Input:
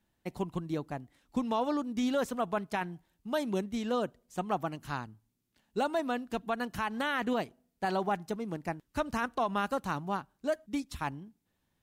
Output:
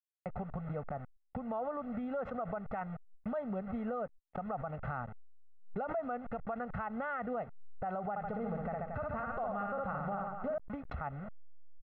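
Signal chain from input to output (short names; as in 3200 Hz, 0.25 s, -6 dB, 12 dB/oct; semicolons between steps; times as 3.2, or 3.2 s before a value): level-crossing sampler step -44.5 dBFS; compressor 12:1, threshold -39 dBFS, peak gain reduction 14 dB; LPF 1600 Hz 24 dB/oct; 8.1–10.58 reverse bouncing-ball echo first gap 60 ms, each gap 1.25×, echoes 5; gate -56 dBFS, range -58 dB; low shelf 350 Hz -4 dB; comb 1.5 ms, depth 96%; limiter -37.5 dBFS, peak gain reduction 9.5 dB; backwards sustainer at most 91 dB/s; gain +8 dB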